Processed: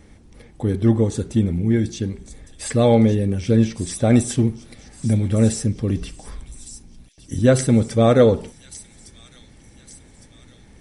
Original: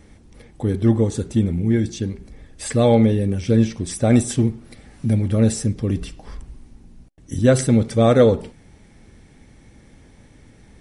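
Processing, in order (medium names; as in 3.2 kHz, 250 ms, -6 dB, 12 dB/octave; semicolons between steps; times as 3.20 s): feedback echo behind a high-pass 1159 ms, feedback 50%, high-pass 4.3 kHz, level -9.5 dB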